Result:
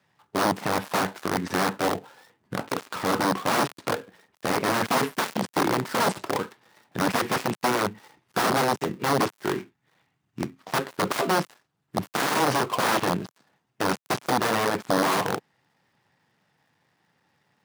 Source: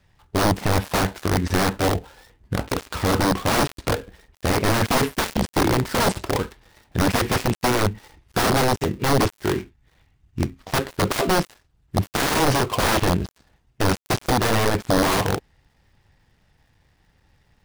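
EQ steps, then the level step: high-pass 140 Hz 24 dB/octave; peaking EQ 1.1 kHz +4.5 dB 1.5 oct; -5.0 dB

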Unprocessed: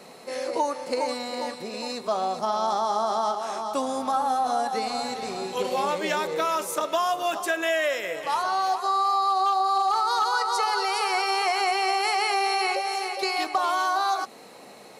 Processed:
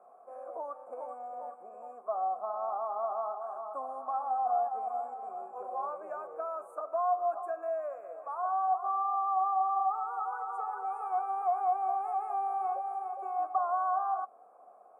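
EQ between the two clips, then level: vowel filter a; Chebyshev band-stop 1.5–8.5 kHz, order 3; bass shelf 190 Hz -11.5 dB; 0.0 dB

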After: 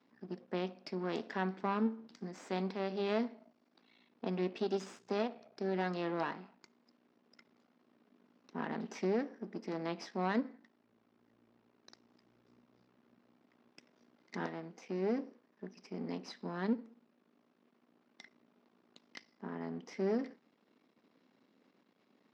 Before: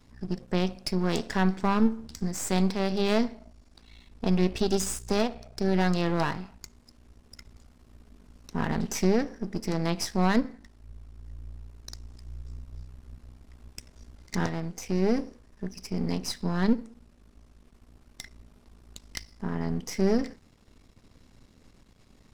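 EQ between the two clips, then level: high-pass 220 Hz 24 dB/octave; distance through air 210 m; -7.0 dB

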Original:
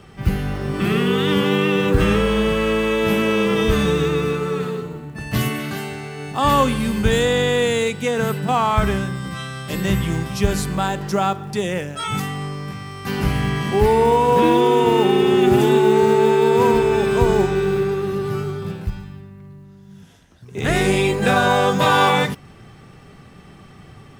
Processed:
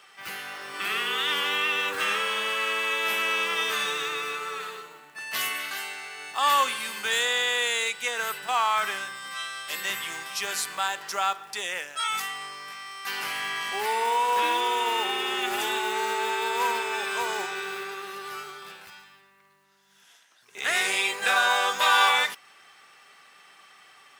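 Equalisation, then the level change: high-pass 1.2 kHz 12 dB/octave; 0.0 dB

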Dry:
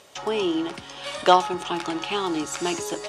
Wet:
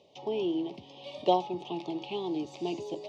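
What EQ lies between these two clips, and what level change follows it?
high-pass 86 Hz 24 dB/octave; Butterworth band-stop 1.5 kHz, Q 0.72; distance through air 250 m; -5.0 dB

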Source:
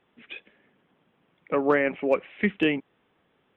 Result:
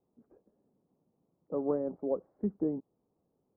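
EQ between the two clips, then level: Bessel low-pass 580 Hz, order 8; distance through air 200 m; -6.0 dB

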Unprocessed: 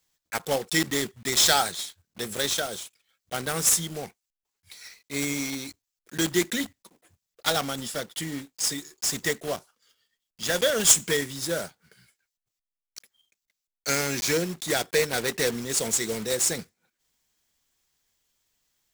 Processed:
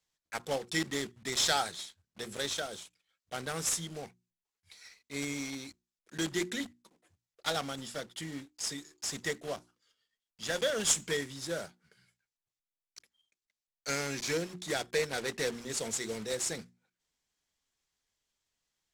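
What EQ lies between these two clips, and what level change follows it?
distance through air 56 m; treble shelf 8.4 kHz +5 dB; hum notches 60/120/180/240/300/360 Hz; -7.0 dB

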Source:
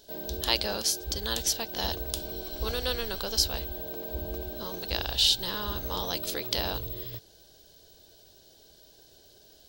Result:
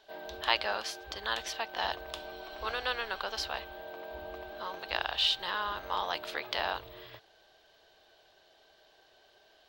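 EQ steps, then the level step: three-band isolator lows -23 dB, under 530 Hz, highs -21 dB, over 2.8 kHz; peaking EQ 500 Hz -6 dB 0.82 oct; treble shelf 7.3 kHz -8 dB; +6.5 dB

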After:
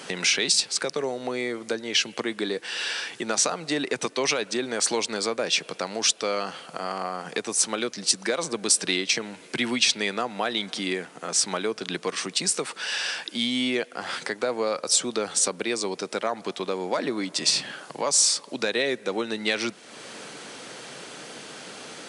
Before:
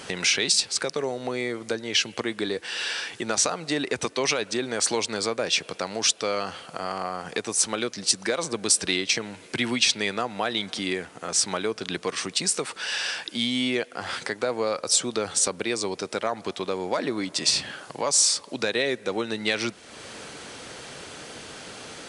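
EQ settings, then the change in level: high-pass 140 Hz 24 dB/octave; 0.0 dB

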